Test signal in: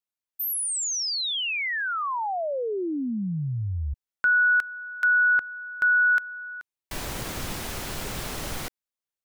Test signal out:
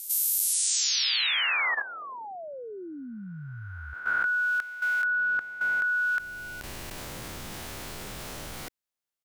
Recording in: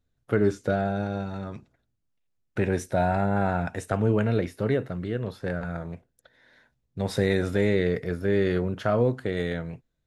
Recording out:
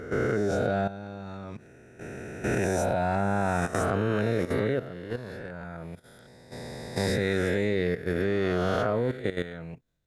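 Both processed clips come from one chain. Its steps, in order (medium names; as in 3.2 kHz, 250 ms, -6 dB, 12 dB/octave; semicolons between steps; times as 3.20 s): reverse spectral sustain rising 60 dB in 1.98 s; bass shelf 64 Hz -3.5 dB; level held to a coarse grid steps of 13 dB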